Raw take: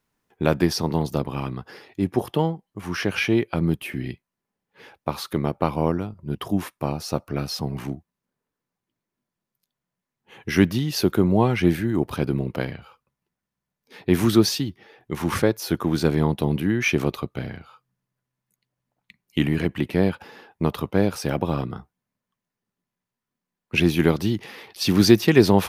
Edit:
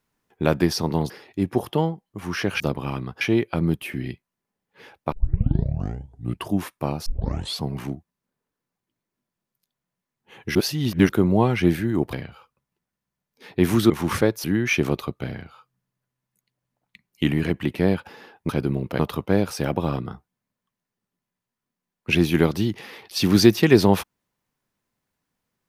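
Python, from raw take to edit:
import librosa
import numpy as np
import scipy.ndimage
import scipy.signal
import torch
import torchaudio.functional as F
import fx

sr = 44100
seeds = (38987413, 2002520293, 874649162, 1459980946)

y = fx.edit(x, sr, fx.move(start_s=1.1, length_s=0.61, to_s=3.21),
    fx.tape_start(start_s=5.12, length_s=1.41),
    fx.tape_start(start_s=7.06, length_s=0.56),
    fx.reverse_span(start_s=10.55, length_s=0.54),
    fx.move(start_s=12.13, length_s=0.5, to_s=20.64),
    fx.cut(start_s=14.4, length_s=0.71),
    fx.cut(start_s=15.65, length_s=0.94), tone=tone)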